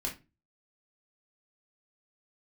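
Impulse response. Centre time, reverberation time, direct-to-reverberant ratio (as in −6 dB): 19 ms, 0.30 s, −2.0 dB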